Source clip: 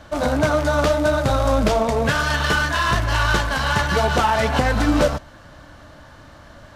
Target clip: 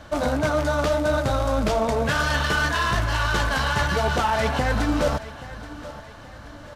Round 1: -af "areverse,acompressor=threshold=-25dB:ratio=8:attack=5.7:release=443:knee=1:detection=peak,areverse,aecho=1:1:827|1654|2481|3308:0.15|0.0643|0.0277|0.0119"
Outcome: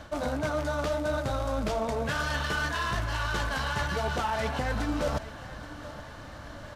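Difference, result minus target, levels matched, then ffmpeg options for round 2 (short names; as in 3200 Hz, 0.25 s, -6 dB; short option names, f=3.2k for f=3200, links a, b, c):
compressor: peak gain reduction +7.5 dB
-af "areverse,acompressor=threshold=-16.5dB:ratio=8:attack=5.7:release=443:knee=1:detection=peak,areverse,aecho=1:1:827|1654|2481|3308:0.15|0.0643|0.0277|0.0119"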